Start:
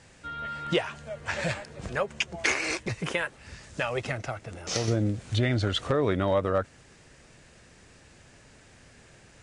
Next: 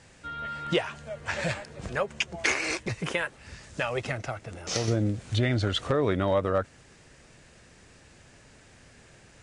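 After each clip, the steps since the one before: nothing audible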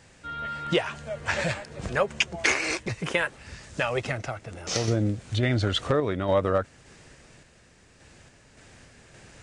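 random-step tremolo; downsampling 22050 Hz; gain +4.5 dB

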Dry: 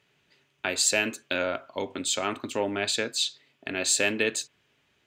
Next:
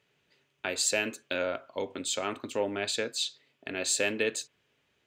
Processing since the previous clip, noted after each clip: bell 490 Hz +5 dB 0.41 oct; gain -4.5 dB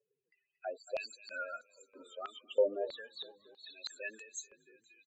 loudest bins only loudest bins 8; frequency-shifting echo 0.234 s, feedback 60%, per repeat -32 Hz, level -14.5 dB; stepped band-pass 3.1 Hz 540–6100 Hz; gain +5 dB

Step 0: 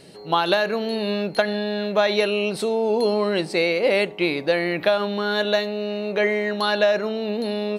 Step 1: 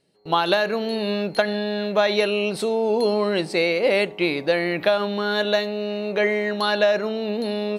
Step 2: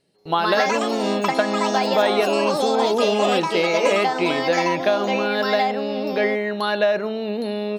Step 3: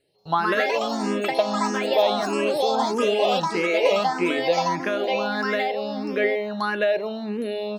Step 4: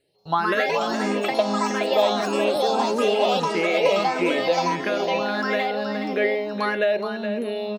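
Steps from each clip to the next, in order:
gate with hold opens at -31 dBFS
dynamic EQ 6500 Hz, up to -7 dB, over -44 dBFS, Q 0.8; echoes that change speed 0.184 s, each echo +4 st, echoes 3
endless phaser +1.6 Hz
echo 0.42 s -8.5 dB

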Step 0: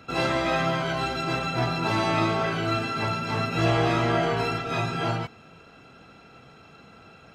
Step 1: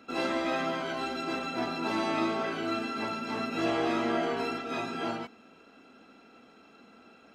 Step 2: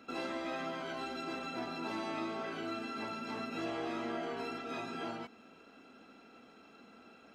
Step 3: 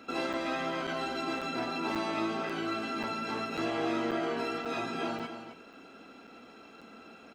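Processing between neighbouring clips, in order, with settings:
resonant low shelf 180 Hz -9.5 dB, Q 3; gain -6.5 dB
compressor 2:1, threshold -39 dBFS, peak gain reduction 8 dB; gain -2 dB
notches 50/100/150/200/250 Hz; echo 0.266 s -9.5 dB; crackling interface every 0.54 s, samples 256, zero, from 0.33; gain +6 dB

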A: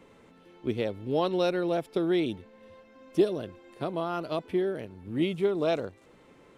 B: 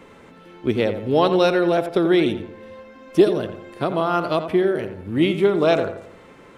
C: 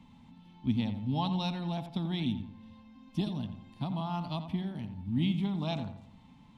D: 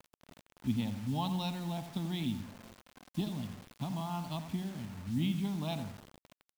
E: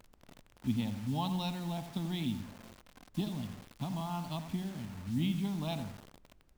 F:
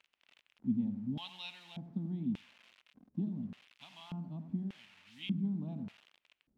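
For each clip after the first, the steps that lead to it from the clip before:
bell 1500 Hz +4 dB 1.4 oct; on a send: darkening echo 86 ms, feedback 44%, low-pass 2200 Hz, level -9 dB; on the sum: gain +8.5 dB
EQ curve 250 Hz 0 dB, 370 Hz -27 dB, 530 Hz -26 dB, 880 Hz -5 dB, 1400 Hz -24 dB, 3500 Hz -5 dB, 8400 Hz -15 dB; gain -3.5 dB
requantised 8-bit, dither none; gain -3 dB
added noise brown -64 dBFS
LFO band-pass square 0.85 Hz 220–2700 Hz; gain +2 dB

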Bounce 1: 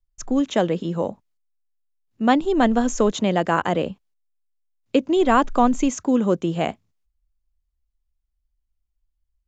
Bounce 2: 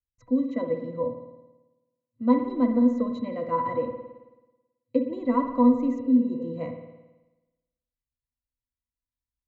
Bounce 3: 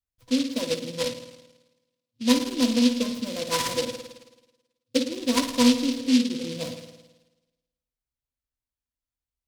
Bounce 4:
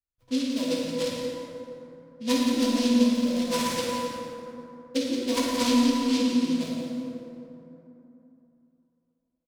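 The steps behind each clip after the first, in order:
octave resonator B, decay 0.13 s; spectral repair 5.97–6.44, 390–2900 Hz after; spring tank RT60 1.1 s, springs 54 ms, chirp 35 ms, DRR 6 dB; gain +3 dB
noise-modulated delay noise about 3700 Hz, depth 0.16 ms
feedback echo 0.175 s, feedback 41%, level -9.5 dB; plate-style reverb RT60 3.2 s, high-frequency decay 0.45×, DRR -2.5 dB; mismatched tape noise reduction decoder only; gain -6 dB

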